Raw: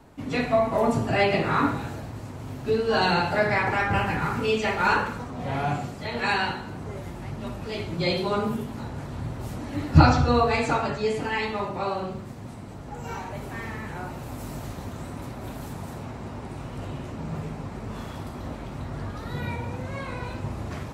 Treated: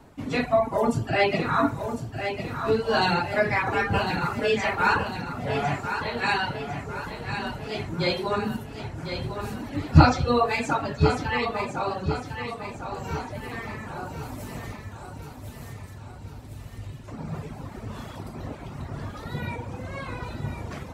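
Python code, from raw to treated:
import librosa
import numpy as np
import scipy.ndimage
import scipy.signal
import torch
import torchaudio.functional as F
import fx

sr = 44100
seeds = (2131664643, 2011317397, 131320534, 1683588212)

y = fx.dereverb_blind(x, sr, rt60_s=1.5)
y = fx.curve_eq(y, sr, hz=(110.0, 170.0, 1100.0, 4100.0), db=(0, -9, -15, -3), at=(14.76, 17.08))
y = fx.echo_feedback(y, sr, ms=1053, feedback_pct=49, wet_db=-8.0)
y = y * librosa.db_to_amplitude(1.0)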